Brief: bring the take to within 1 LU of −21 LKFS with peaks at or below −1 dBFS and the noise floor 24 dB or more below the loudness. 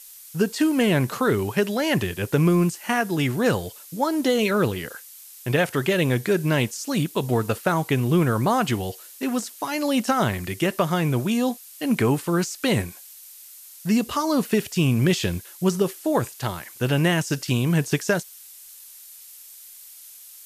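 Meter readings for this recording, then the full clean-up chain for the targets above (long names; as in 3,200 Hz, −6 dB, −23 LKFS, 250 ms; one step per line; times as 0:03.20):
background noise floor −45 dBFS; target noise floor −47 dBFS; integrated loudness −23.0 LKFS; sample peak −7.5 dBFS; target loudness −21.0 LKFS
→ broadband denoise 6 dB, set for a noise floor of −45 dBFS
level +2 dB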